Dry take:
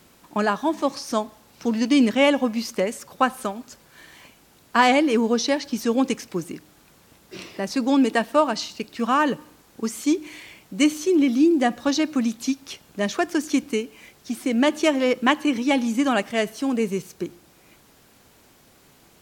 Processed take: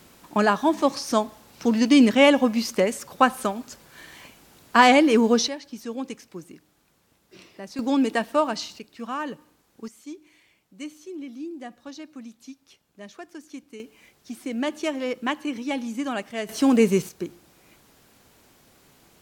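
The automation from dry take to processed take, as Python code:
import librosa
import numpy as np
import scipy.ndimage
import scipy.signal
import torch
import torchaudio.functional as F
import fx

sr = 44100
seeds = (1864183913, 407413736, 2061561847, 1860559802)

y = fx.gain(x, sr, db=fx.steps((0.0, 2.0), (5.48, -11.0), (7.79, -3.0), (8.79, -10.5), (9.88, -18.0), (13.8, -7.5), (16.49, 5.5), (17.09, -2.0)))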